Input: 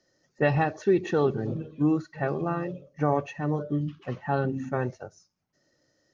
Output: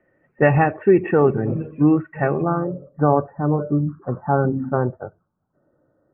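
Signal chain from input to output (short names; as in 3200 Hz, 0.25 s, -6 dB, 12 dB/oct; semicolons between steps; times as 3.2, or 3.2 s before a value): steep low-pass 2600 Hz 72 dB/oct, from 2.42 s 1500 Hz; gain +8 dB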